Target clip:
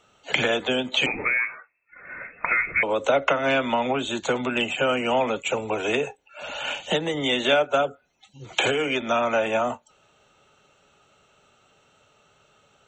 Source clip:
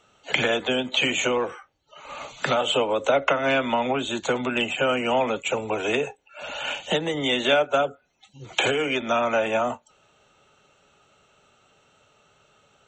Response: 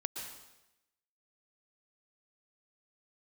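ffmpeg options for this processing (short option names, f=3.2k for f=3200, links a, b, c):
-filter_complex "[0:a]asettb=1/sr,asplit=3[a][b][c];[a]atrim=end=1.064[d];[b]atrim=start=1.06:end=2.83,asetpts=PTS-STARTPTS,afade=t=in:d=0.004:c=qsin,afade=t=out:st=1.766:d=0.004:c=qsin,lowpass=f=2.3k:t=q:w=0.5098,lowpass=f=2.3k:t=q:w=0.6013,lowpass=f=2.3k:t=q:w=0.9,lowpass=f=2.3k:t=q:w=2.563,afreqshift=-2700[e];[c]atrim=start=2.826[f];[d][e]acrossfade=d=0.004:c1=hsin:c2=qsin[g];[g][f]acrossfade=d=0.004:c1=qsin:c2=hsin"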